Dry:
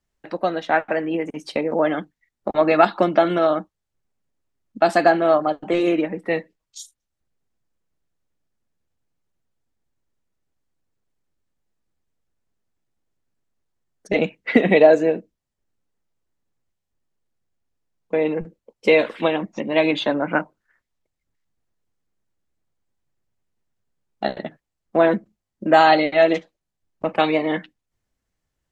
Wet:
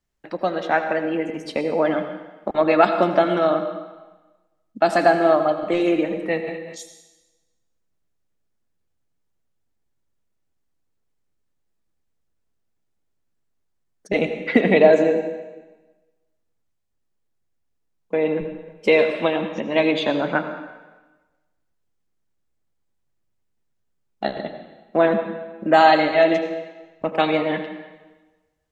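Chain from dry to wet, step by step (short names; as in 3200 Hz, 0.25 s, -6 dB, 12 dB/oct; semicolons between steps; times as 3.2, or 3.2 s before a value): reverb RT60 1.2 s, pre-delay 72 ms, DRR 7.5 dB; 6.39–6.8 sustainer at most 40 dB/s; gain -1 dB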